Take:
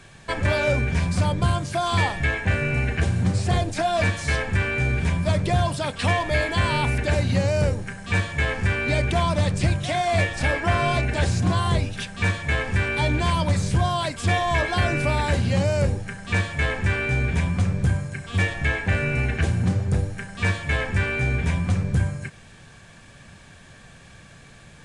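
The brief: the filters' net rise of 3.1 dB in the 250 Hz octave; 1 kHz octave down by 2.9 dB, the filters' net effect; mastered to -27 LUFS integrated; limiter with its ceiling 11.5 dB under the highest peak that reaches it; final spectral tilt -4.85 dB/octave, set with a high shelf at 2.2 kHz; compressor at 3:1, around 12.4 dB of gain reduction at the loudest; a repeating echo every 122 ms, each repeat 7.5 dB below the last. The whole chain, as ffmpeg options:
-af "equalizer=f=250:t=o:g=5,equalizer=f=1000:t=o:g=-5.5,highshelf=f=2200:g=5,acompressor=threshold=0.0224:ratio=3,alimiter=level_in=2.24:limit=0.0631:level=0:latency=1,volume=0.447,aecho=1:1:122|244|366|488|610:0.422|0.177|0.0744|0.0312|0.0131,volume=3.76"

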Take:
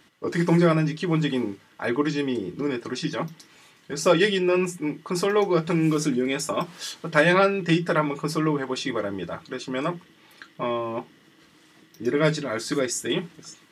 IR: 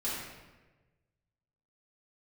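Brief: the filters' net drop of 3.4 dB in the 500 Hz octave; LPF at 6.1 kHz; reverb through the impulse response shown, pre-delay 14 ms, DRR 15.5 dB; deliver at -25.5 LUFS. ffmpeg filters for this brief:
-filter_complex "[0:a]lowpass=6100,equalizer=f=500:t=o:g=-4.5,asplit=2[s0][s1];[1:a]atrim=start_sample=2205,adelay=14[s2];[s1][s2]afir=irnorm=-1:irlink=0,volume=0.0891[s3];[s0][s3]amix=inputs=2:normalize=0,volume=1.06"

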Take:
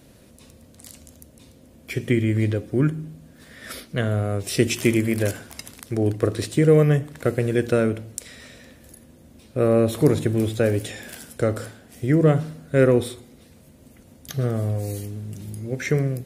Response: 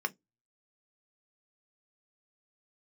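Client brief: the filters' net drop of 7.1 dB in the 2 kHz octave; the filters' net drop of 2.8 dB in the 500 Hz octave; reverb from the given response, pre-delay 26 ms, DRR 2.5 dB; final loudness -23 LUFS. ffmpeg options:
-filter_complex "[0:a]equalizer=f=500:t=o:g=-3,equalizer=f=2000:t=o:g=-9,asplit=2[s0][s1];[1:a]atrim=start_sample=2205,adelay=26[s2];[s1][s2]afir=irnorm=-1:irlink=0,volume=0.398[s3];[s0][s3]amix=inputs=2:normalize=0"

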